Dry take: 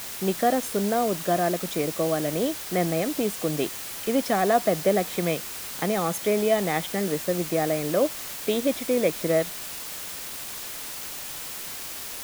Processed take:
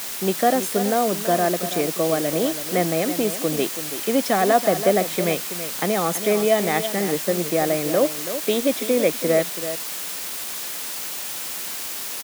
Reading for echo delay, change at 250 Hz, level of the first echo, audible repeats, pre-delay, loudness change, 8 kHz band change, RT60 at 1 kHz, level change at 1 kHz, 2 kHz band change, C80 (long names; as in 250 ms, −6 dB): 330 ms, +3.0 dB, −11.0 dB, 1, no reverb audible, +4.0 dB, +5.5 dB, no reverb audible, +4.0 dB, +4.5 dB, no reverb audible